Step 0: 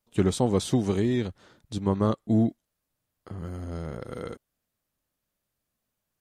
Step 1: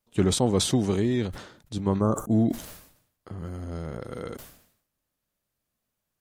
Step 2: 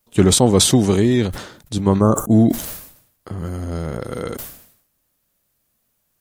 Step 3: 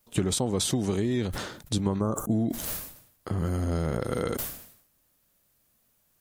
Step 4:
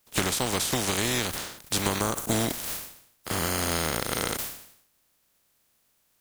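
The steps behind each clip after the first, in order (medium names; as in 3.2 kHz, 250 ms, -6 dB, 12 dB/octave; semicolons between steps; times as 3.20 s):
time-frequency box 2.02–2.32 s, 1.6–5.7 kHz -21 dB; decay stretcher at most 84 dB/s
treble shelf 8.9 kHz +9 dB; trim +9 dB
compression 12:1, threshold -23 dBFS, peak gain reduction 15.5 dB
spectral contrast reduction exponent 0.36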